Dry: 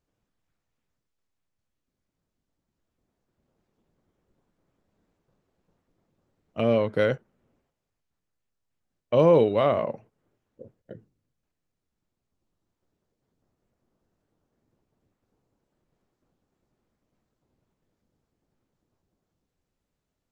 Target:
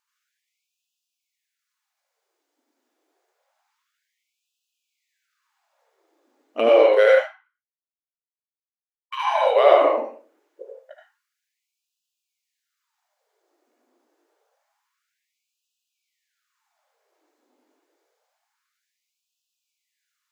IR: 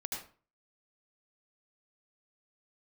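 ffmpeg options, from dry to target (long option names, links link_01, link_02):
-filter_complex "[0:a]asplit=2[link_01][link_02];[link_02]acontrast=67,volume=0.5dB[link_03];[link_01][link_03]amix=inputs=2:normalize=0,flanger=delay=7:depth=3.1:regen=-72:speed=1.5:shape=sinusoidal,asettb=1/sr,asplit=3[link_04][link_05][link_06];[link_04]atrim=end=6.914[link_07];[link_05]atrim=start=6.91:end=9.16,asetpts=PTS-STARTPTS,afade=type=in:duration=0.004:curve=qsin,afade=type=out:start_time=2.246:duration=0.004:curve=qsin,aeval=exprs='sgn(val(0))*max(abs(val(0))-0.00299,0)':channel_layout=same[link_08];[link_06]atrim=start=9.156[link_09];[link_07][link_08]acrossfade=duration=0.004:curve1=hsin:curve2=qsin[link_10];[link_10][link_09]acrossfade=duration=0.004:curve1=qsin:curve2=hsin[link_11];[1:a]atrim=start_sample=2205[link_12];[link_11][link_12]afir=irnorm=-1:irlink=0,afftfilt=real='re*gte(b*sr/1024,240*pow(2500/240,0.5+0.5*sin(2*PI*0.27*pts/sr)))':imag='im*gte(b*sr/1024,240*pow(2500/240,0.5+0.5*sin(2*PI*0.27*pts/sr)))':win_size=1024:overlap=0.75,volume=3.5dB"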